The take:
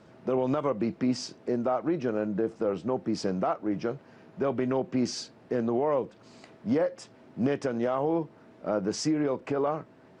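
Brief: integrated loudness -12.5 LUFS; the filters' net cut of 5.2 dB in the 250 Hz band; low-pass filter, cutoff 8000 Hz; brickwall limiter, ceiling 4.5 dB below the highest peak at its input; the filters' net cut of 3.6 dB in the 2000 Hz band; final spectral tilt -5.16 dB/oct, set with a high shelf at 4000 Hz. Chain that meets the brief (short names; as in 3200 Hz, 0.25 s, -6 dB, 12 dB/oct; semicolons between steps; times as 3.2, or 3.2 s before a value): LPF 8000 Hz; bell 250 Hz -6.5 dB; bell 2000 Hz -5.5 dB; high shelf 4000 Hz +3.5 dB; gain +21.5 dB; limiter -1.5 dBFS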